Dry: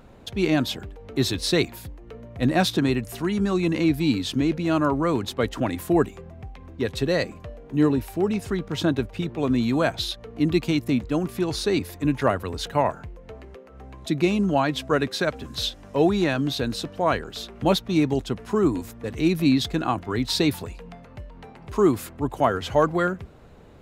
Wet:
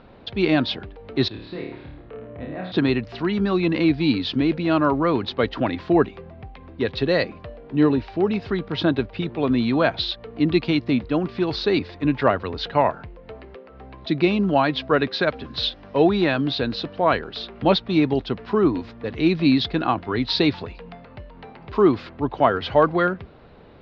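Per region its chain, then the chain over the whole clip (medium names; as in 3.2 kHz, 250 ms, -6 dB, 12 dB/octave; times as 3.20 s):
1.28–2.72 s: compression 3:1, threshold -36 dBFS + distance through air 490 m + flutter echo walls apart 4.7 m, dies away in 0.73 s
whole clip: steep low-pass 4.7 kHz 48 dB/octave; bass shelf 160 Hz -6 dB; trim +3.5 dB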